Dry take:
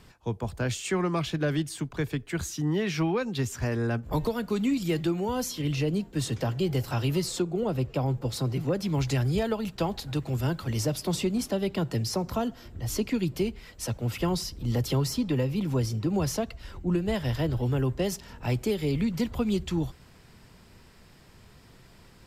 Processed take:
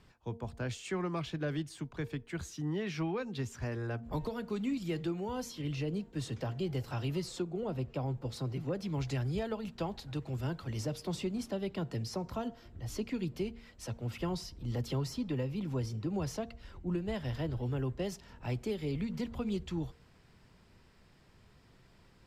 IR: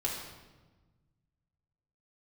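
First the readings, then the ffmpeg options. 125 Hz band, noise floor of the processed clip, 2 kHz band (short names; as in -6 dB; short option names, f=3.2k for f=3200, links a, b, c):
-8.0 dB, -62 dBFS, -8.5 dB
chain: -af "highshelf=f=8.8k:g=-11.5,bandreject=f=231.9:t=h:w=4,bandreject=f=463.8:t=h:w=4,bandreject=f=695.7:t=h:w=4,bandreject=f=927.6:t=h:w=4,volume=-8dB"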